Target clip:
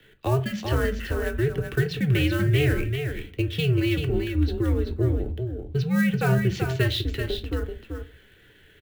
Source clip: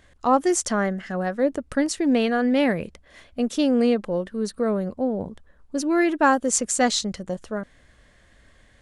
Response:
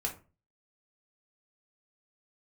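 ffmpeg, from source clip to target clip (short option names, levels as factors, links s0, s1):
-filter_complex "[0:a]highpass=f=150:t=q:w=0.5412,highpass=f=150:t=q:w=1.307,lowpass=f=3500:t=q:w=0.5176,lowpass=f=3500:t=q:w=0.7071,lowpass=f=3500:t=q:w=1.932,afreqshift=-140,acrossover=split=400|1400[s0][s1][s2];[s2]acrusher=bits=4:mode=log:mix=0:aa=0.000001[s3];[s0][s1][s3]amix=inputs=3:normalize=0,equalizer=f=1000:w=1.2:g=-15,acrossover=split=150|840[s4][s5][s6];[s4]acompressor=threshold=0.0282:ratio=4[s7];[s5]acompressor=threshold=0.0224:ratio=4[s8];[s6]acompressor=threshold=0.0158:ratio=4[s9];[s7][s8][s9]amix=inputs=3:normalize=0,highshelf=f=2600:g=8.5,aecho=1:1:385:0.473,asplit=2[s10][s11];[1:a]atrim=start_sample=2205[s12];[s11][s12]afir=irnorm=-1:irlink=0,volume=0.75[s13];[s10][s13]amix=inputs=2:normalize=0"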